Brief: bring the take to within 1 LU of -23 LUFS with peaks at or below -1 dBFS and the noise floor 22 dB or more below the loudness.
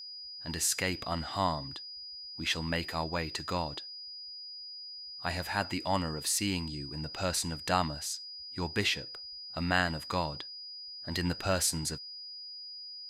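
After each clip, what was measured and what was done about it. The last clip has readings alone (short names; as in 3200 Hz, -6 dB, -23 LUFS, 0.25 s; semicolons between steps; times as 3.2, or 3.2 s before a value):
steady tone 4900 Hz; tone level -42 dBFS; loudness -33.5 LUFS; peak -12.0 dBFS; loudness target -23.0 LUFS
-> notch 4900 Hz, Q 30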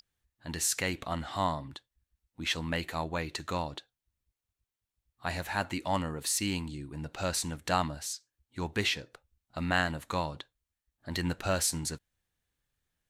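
steady tone none; loudness -33.0 LUFS; peak -12.0 dBFS; loudness target -23.0 LUFS
-> gain +10 dB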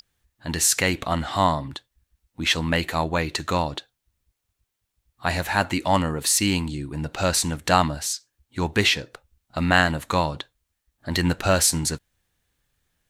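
loudness -23.0 LUFS; peak -2.0 dBFS; noise floor -80 dBFS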